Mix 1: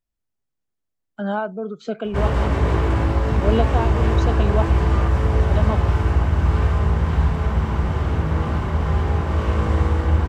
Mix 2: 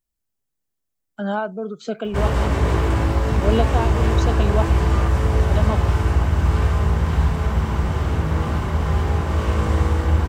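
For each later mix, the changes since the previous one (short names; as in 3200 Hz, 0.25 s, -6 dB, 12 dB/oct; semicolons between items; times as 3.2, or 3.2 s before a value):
master: add high shelf 6000 Hz +11.5 dB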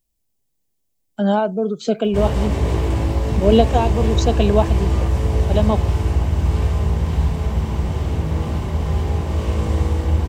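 speech +8.0 dB; master: add bell 1400 Hz -10 dB 0.88 oct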